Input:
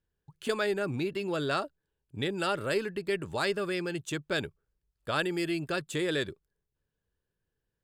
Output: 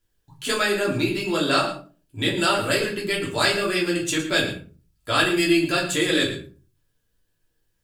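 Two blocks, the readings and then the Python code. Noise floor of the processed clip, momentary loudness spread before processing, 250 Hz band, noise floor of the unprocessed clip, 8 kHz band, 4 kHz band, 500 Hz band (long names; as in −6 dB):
−72 dBFS, 7 LU, +10.0 dB, −85 dBFS, +15.0 dB, +13.5 dB, +6.5 dB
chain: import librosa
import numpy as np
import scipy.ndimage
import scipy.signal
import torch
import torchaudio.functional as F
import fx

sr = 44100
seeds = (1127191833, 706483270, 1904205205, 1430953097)

y = fx.high_shelf(x, sr, hz=2200.0, db=10.5)
y = y + 10.0 ** (-12.5 / 20.0) * np.pad(y, (int(112 * sr / 1000.0), 0))[:len(y)]
y = fx.room_shoebox(y, sr, seeds[0], volume_m3=170.0, walls='furnished', distance_m=3.0)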